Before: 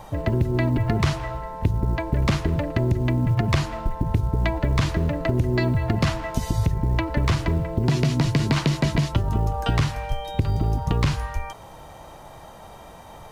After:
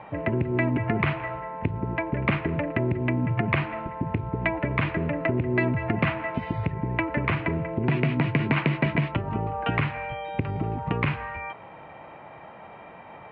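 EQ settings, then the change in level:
high-pass filter 150 Hz 12 dB per octave
low-pass with resonance 2,400 Hz, resonance Q 3.4
high-frequency loss of the air 420 metres
0.0 dB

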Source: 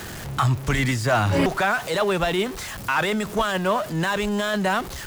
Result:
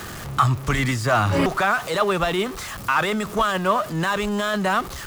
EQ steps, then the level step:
parametric band 1,200 Hz +8 dB 0.25 octaves
0.0 dB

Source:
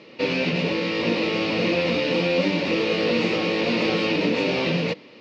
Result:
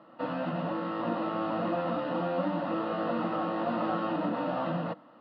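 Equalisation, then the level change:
loudspeaker in its box 160–2,600 Hz, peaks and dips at 330 Hz +9 dB, 690 Hz +8 dB, 1,300 Hz +9 dB
phaser with its sweep stopped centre 960 Hz, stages 4
−4.0 dB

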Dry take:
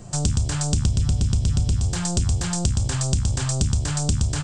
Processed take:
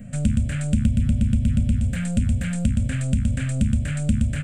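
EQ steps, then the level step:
drawn EQ curve 170 Hz 0 dB, 240 Hz +15 dB, 340 Hz −22 dB, 560 Hz +2 dB, 930 Hz −24 dB, 1,500 Hz 0 dB, 2,300 Hz +5 dB, 5,300 Hz −23 dB, 12,000 Hz +4 dB
0.0 dB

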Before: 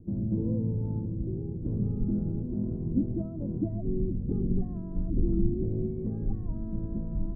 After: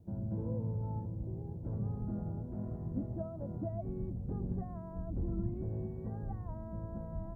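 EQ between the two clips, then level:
high-pass filter 63 Hz
parametric band 270 Hz −8.5 dB 2.2 octaves
low shelf with overshoot 500 Hz −8 dB, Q 1.5
+6.5 dB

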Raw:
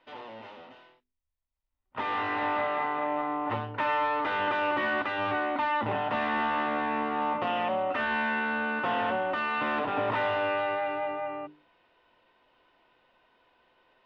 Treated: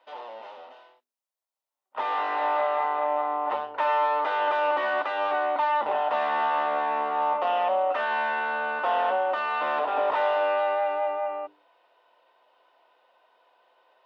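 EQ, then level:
high-pass with resonance 620 Hz, resonance Q 1.5
parametric band 2,100 Hz −5.5 dB 1.2 octaves
+2.5 dB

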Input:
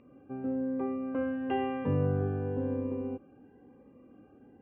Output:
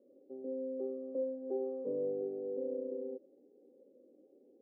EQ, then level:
high-pass filter 190 Hz 24 dB per octave
transistor ladder low-pass 600 Hz, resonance 75%
parametric band 370 Hz +14.5 dB 0.99 octaves
−9.0 dB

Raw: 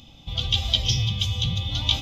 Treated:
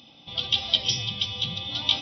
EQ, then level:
high-pass filter 230 Hz 12 dB per octave
linear-phase brick-wall low-pass 5,900 Hz
0.0 dB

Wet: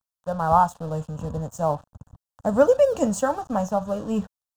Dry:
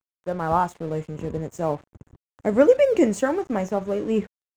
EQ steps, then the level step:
phaser with its sweep stopped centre 890 Hz, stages 4
+4.5 dB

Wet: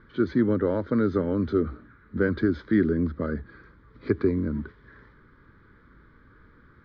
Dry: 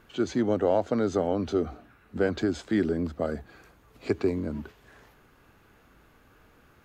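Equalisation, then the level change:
low-pass filter 3,600 Hz 12 dB per octave
high-frequency loss of the air 230 metres
phaser with its sweep stopped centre 2,700 Hz, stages 6
+6.0 dB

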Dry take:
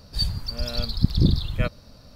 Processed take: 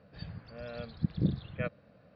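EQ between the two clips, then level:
loudspeaker in its box 220–2,100 Hz, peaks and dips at 250 Hz −10 dB, 370 Hz −9 dB, 620 Hz −3 dB, 920 Hz −8 dB, 1,300 Hz −5 dB, 2,000 Hz −4 dB
parametric band 1,000 Hz −5 dB 1 octave
0.0 dB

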